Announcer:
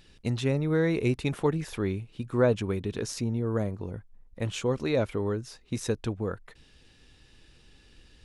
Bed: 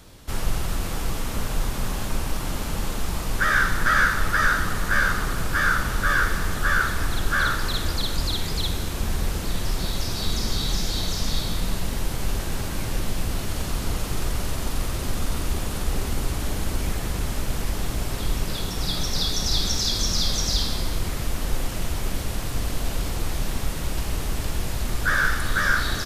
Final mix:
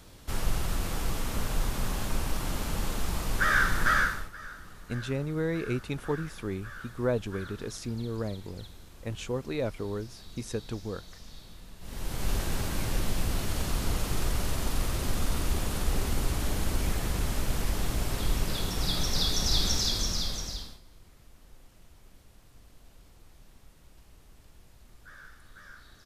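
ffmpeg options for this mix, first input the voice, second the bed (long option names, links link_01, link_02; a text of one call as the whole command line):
ffmpeg -i stem1.wav -i stem2.wav -filter_complex "[0:a]adelay=4650,volume=-5dB[link_01];[1:a]volume=16dB,afade=type=out:start_time=3.9:duration=0.4:silence=0.112202,afade=type=in:start_time=11.79:duration=0.54:silence=0.1,afade=type=out:start_time=19.72:duration=1.08:silence=0.0501187[link_02];[link_01][link_02]amix=inputs=2:normalize=0" out.wav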